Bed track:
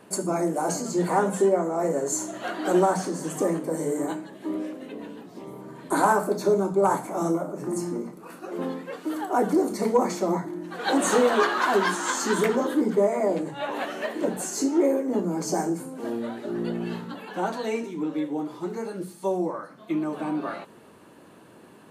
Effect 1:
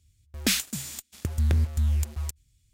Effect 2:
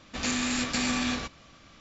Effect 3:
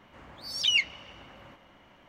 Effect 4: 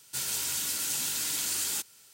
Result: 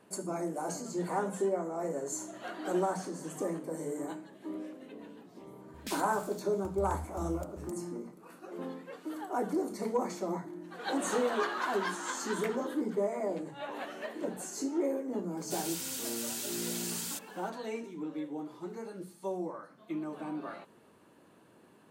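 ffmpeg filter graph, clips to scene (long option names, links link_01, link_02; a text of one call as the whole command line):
ffmpeg -i bed.wav -i cue0.wav -i cue1.wav -i cue2.wav -i cue3.wav -filter_complex "[0:a]volume=-10dB[link_01];[4:a]asoftclip=type=tanh:threshold=-21.5dB[link_02];[1:a]atrim=end=2.73,asetpts=PTS-STARTPTS,volume=-17.5dB,afade=type=in:duration=0.004:curve=hsin,afade=type=out:start_time=2.726:duration=0.004:curve=hsin,adelay=5400[link_03];[link_02]atrim=end=2.13,asetpts=PTS-STARTPTS,volume=-6.5dB,afade=type=in:duration=0.004:curve=hsin,afade=type=out:start_time=2.126:duration=0.004:curve=hsin,adelay=15370[link_04];[link_01][link_03][link_04]amix=inputs=3:normalize=0" out.wav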